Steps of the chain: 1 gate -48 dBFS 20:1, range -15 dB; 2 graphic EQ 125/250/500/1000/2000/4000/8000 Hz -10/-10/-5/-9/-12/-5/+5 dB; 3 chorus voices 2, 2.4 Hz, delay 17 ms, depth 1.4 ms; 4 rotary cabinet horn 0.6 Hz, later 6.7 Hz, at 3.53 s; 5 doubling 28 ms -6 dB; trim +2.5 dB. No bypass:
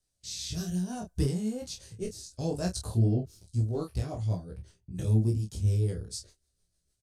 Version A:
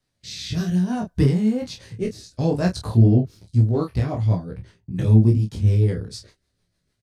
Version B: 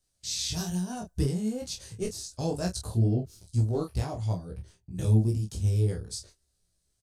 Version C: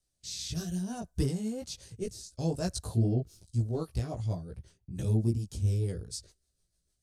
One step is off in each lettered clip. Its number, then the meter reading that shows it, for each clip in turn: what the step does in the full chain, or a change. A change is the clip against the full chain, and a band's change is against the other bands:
2, momentary loudness spread change +4 LU; 4, 4 kHz band +2.5 dB; 5, momentary loudness spread change -1 LU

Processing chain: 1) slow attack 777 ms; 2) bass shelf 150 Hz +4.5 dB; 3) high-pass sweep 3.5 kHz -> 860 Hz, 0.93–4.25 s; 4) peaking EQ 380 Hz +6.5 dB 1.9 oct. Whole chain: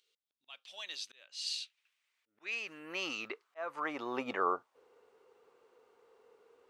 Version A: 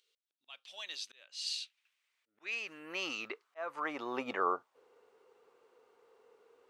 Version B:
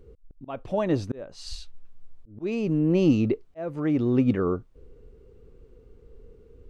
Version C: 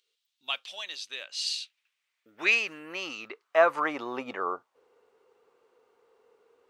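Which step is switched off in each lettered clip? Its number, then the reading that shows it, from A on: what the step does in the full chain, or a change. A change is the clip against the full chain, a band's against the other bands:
2, 125 Hz band -2.0 dB; 3, 125 Hz band +36.5 dB; 1, 500 Hz band +5.0 dB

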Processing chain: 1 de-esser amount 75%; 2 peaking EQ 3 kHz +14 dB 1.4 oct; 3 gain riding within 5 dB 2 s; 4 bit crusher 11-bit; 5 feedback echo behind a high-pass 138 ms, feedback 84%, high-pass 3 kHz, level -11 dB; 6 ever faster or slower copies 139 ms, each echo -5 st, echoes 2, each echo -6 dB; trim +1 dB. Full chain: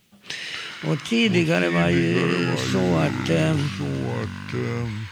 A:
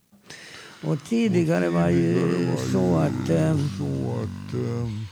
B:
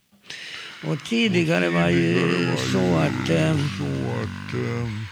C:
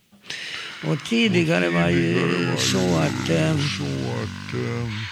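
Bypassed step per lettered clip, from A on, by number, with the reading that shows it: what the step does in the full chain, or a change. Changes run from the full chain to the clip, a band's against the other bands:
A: 2, 4 kHz band -9.5 dB; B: 3, momentary loudness spread change +3 LU; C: 1, 8 kHz band +5.5 dB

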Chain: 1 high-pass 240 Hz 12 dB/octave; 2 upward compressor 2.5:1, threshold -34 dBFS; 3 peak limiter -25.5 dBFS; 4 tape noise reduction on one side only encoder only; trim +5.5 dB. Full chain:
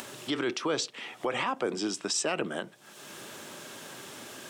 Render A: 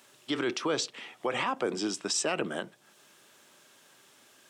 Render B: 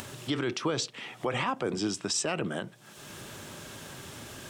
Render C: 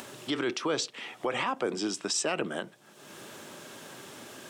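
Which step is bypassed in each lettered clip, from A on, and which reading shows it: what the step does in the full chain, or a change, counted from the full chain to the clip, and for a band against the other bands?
2, momentary loudness spread change -7 LU; 1, 125 Hz band +9.0 dB; 4, momentary loudness spread change +2 LU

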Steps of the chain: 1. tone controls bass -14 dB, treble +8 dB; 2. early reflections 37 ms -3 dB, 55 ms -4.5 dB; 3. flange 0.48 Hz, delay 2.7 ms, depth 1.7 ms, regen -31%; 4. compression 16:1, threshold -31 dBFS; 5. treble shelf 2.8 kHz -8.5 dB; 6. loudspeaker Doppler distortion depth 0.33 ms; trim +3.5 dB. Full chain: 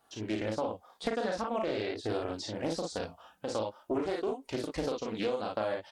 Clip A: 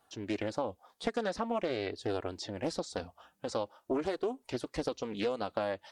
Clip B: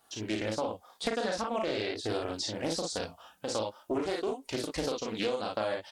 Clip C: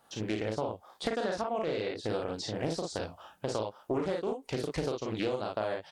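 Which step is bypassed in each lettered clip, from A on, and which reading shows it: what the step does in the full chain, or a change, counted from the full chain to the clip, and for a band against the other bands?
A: 2, momentary loudness spread change +1 LU; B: 5, 8 kHz band +6.5 dB; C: 3, 125 Hz band +3.5 dB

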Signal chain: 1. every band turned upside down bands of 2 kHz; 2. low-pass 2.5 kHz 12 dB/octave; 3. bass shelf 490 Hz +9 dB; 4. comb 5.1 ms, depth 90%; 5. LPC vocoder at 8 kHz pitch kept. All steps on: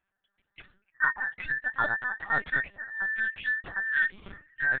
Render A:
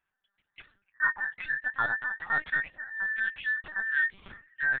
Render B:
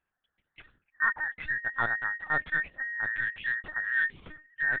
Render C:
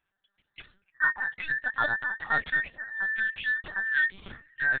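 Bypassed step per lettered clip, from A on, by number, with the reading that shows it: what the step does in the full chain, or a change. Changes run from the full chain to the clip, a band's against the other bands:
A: 3, 2 kHz band +4.0 dB; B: 4, 125 Hz band +2.0 dB; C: 2, 4 kHz band +5.5 dB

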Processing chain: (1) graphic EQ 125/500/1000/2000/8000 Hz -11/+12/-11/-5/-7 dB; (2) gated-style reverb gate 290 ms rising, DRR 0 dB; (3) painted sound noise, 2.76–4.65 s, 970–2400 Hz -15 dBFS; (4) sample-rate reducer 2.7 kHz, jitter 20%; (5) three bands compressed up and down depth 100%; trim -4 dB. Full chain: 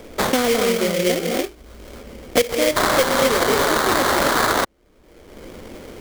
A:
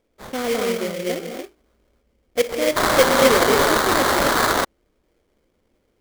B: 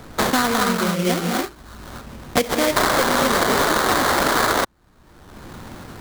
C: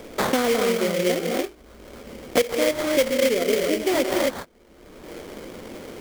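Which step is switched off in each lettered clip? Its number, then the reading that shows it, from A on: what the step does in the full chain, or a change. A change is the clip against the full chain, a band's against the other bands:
5, crest factor change -2.0 dB; 1, 500 Hz band -4.0 dB; 3, 500 Hz band +4.5 dB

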